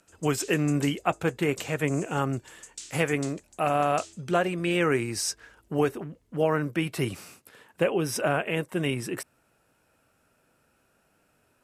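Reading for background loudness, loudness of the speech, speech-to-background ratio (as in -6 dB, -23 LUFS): -45.0 LUFS, -28.0 LUFS, 17.0 dB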